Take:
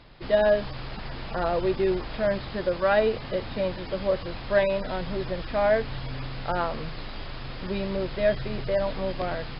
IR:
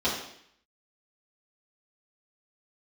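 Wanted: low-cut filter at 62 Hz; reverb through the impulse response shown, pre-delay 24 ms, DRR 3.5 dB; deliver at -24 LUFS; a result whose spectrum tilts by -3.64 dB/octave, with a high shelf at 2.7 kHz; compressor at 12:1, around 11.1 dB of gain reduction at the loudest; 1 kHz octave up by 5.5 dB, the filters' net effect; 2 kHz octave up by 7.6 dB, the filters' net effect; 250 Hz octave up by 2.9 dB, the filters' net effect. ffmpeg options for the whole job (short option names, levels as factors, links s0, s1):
-filter_complex "[0:a]highpass=62,equalizer=f=250:t=o:g=4,equalizer=f=1000:t=o:g=5,equalizer=f=2000:t=o:g=6.5,highshelf=f=2700:g=3.5,acompressor=threshold=0.0631:ratio=12,asplit=2[s0][s1];[1:a]atrim=start_sample=2205,adelay=24[s2];[s1][s2]afir=irnorm=-1:irlink=0,volume=0.168[s3];[s0][s3]amix=inputs=2:normalize=0,volume=1.58"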